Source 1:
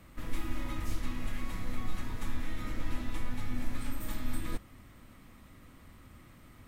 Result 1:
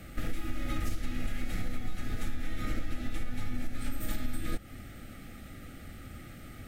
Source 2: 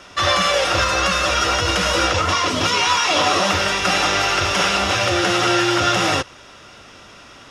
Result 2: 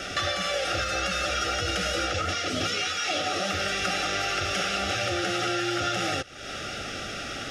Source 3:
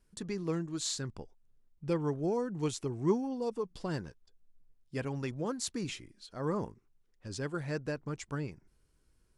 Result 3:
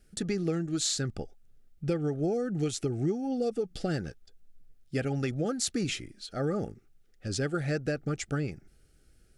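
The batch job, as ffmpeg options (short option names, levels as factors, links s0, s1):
-af "acompressor=threshold=0.02:ratio=8,asuperstop=centerf=1000:order=12:qfactor=3.1,volume=2.66"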